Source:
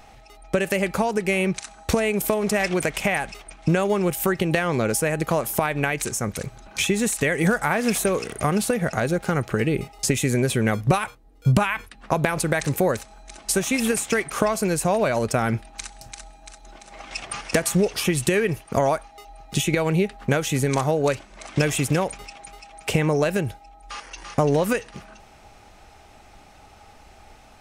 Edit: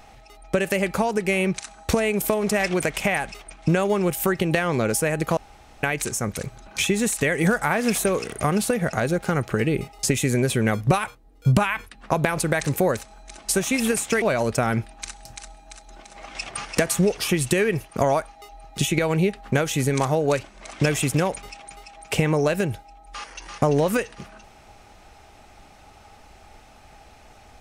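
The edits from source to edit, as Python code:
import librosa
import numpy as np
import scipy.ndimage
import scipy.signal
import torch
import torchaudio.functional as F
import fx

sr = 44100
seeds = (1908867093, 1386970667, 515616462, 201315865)

y = fx.edit(x, sr, fx.room_tone_fill(start_s=5.37, length_s=0.46),
    fx.cut(start_s=14.22, length_s=0.76), tone=tone)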